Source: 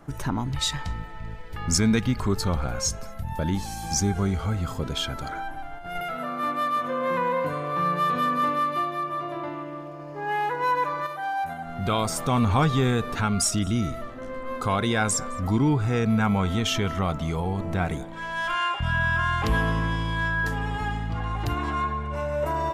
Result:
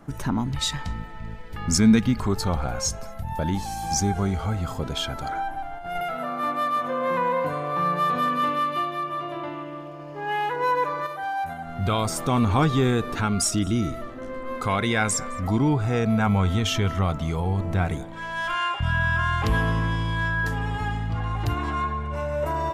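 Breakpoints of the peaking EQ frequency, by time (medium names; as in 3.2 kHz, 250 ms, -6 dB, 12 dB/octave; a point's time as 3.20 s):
peaking EQ +6 dB 0.49 oct
220 Hz
from 2.23 s 770 Hz
from 8.28 s 3 kHz
from 10.56 s 450 Hz
from 11.23 s 93 Hz
from 12.08 s 330 Hz
from 14.58 s 2.1 kHz
from 15.48 s 660 Hz
from 16.27 s 97 Hz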